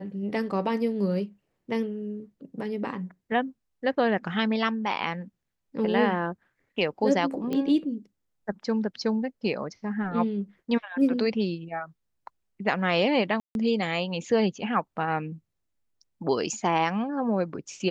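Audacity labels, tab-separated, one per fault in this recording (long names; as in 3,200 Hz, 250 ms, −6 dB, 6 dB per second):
7.530000	7.530000	click −18 dBFS
13.400000	13.550000	drop-out 151 ms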